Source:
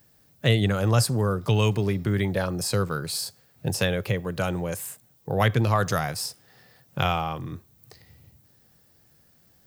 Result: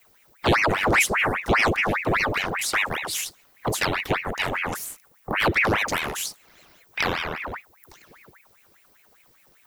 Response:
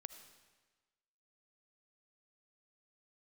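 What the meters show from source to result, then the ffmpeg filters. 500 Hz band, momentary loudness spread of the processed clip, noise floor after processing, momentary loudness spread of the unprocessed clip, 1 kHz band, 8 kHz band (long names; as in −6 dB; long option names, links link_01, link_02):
0.0 dB, 13 LU, −59 dBFS, 12 LU, +4.5 dB, +2.5 dB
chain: -filter_complex "[0:a]acrossover=split=230|3000[link_01][link_02][link_03];[link_02]acompressor=threshold=-27dB:ratio=6[link_04];[link_01][link_04][link_03]amix=inputs=3:normalize=0,afreqshift=16,aeval=exprs='val(0)*sin(2*PI*1300*n/s+1300*0.85/5*sin(2*PI*5*n/s))':channel_layout=same,volume=4.5dB"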